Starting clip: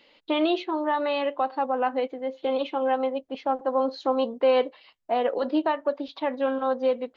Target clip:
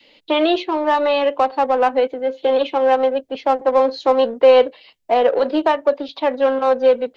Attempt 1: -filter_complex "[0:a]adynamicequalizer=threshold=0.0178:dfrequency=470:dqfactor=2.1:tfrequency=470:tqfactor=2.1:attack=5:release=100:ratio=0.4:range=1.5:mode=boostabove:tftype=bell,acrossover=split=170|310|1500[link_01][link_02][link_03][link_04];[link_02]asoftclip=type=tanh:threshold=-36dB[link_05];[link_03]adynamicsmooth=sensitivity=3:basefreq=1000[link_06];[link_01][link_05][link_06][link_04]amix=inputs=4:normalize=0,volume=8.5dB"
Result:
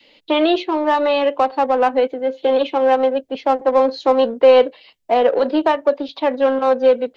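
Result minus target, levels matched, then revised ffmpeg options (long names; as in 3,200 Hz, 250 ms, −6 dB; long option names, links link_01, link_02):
soft clipping: distortion −5 dB
-filter_complex "[0:a]adynamicequalizer=threshold=0.0178:dfrequency=470:dqfactor=2.1:tfrequency=470:tqfactor=2.1:attack=5:release=100:ratio=0.4:range=1.5:mode=boostabove:tftype=bell,acrossover=split=170|310|1500[link_01][link_02][link_03][link_04];[link_02]asoftclip=type=tanh:threshold=-47dB[link_05];[link_03]adynamicsmooth=sensitivity=3:basefreq=1000[link_06];[link_01][link_05][link_06][link_04]amix=inputs=4:normalize=0,volume=8.5dB"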